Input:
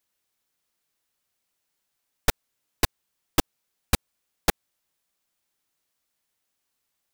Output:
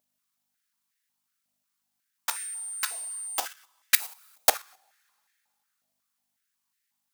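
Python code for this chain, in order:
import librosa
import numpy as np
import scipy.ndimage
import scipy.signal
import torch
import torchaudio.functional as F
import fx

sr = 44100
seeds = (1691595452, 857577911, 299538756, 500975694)

p1 = fx.high_shelf(x, sr, hz=2600.0, db=10.5)
p2 = fx.rev_double_slope(p1, sr, seeds[0], early_s=0.52, late_s=2.6, knee_db=-18, drr_db=15.5)
p3 = fx.dmg_tone(p2, sr, hz=8900.0, level_db=-29.0, at=(2.29, 3.39), fade=0.02)
p4 = fx.high_shelf(p3, sr, hz=9500.0, db=10.0, at=(3.94, 4.49))
p5 = fx.add_hum(p4, sr, base_hz=50, snr_db=27)
p6 = fx.fuzz(p5, sr, gain_db=33.0, gate_db=-38.0)
p7 = p5 + F.gain(torch.from_numpy(p6), -8.5).numpy()
p8 = fx.level_steps(p7, sr, step_db=10)
p9 = fx.filter_held_highpass(p8, sr, hz=5.5, low_hz=640.0, high_hz=1800.0)
y = F.gain(torch.from_numpy(p9), -6.5).numpy()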